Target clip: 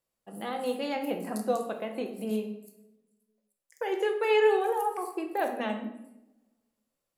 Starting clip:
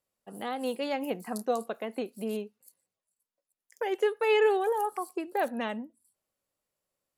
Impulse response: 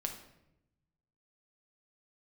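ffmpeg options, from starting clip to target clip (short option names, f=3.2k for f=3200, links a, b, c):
-filter_complex "[1:a]atrim=start_sample=2205[a];[0:a][a]afir=irnorm=-1:irlink=0"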